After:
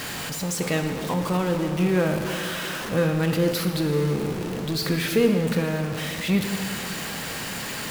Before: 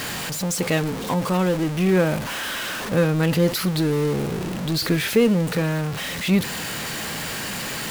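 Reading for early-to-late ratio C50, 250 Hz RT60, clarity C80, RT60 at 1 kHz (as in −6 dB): 6.0 dB, 2.9 s, 6.5 dB, 2.8 s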